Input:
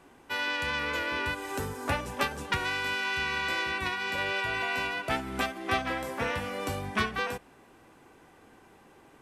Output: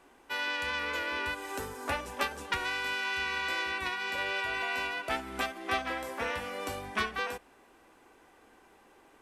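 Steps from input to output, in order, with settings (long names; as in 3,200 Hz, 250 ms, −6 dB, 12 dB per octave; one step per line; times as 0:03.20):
parametric band 130 Hz −12 dB 1.4 octaves
level −2 dB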